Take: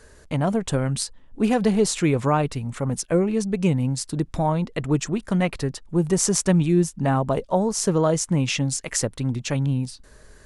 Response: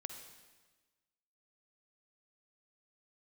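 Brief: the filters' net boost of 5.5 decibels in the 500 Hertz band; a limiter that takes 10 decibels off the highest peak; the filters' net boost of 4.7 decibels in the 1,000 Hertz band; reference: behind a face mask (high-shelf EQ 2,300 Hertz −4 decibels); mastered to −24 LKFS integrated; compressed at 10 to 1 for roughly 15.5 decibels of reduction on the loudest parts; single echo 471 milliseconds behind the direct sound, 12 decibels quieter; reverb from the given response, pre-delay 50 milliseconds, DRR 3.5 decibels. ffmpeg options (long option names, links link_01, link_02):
-filter_complex "[0:a]equalizer=frequency=500:width_type=o:gain=6,equalizer=frequency=1000:width_type=o:gain=4.5,acompressor=threshold=-27dB:ratio=10,alimiter=limit=-22.5dB:level=0:latency=1,aecho=1:1:471:0.251,asplit=2[link_01][link_02];[1:a]atrim=start_sample=2205,adelay=50[link_03];[link_02][link_03]afir=irnorm=-1:irlink=0,volume=-1dB[link_04];[link_01][link_04]amix=inputs=2:normalize=0,highshelf=frequency=2300:gain=-4,volume=8dB"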